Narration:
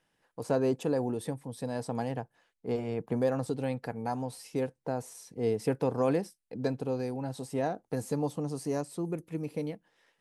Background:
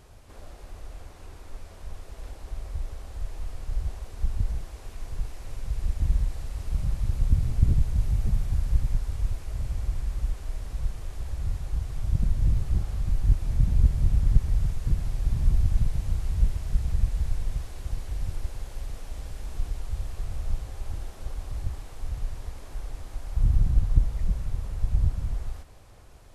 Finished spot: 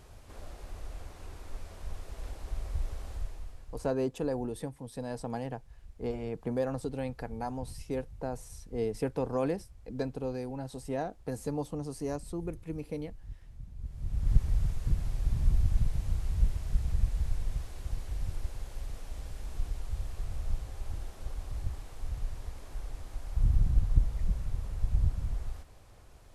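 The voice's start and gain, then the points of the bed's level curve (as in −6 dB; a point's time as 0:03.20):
3.35 s, −3.0 dB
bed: 0:03.12 −1 dB
0:04.07 −23.5 dB
0:13.76 −23.5 dB
0:14.33 −4 dB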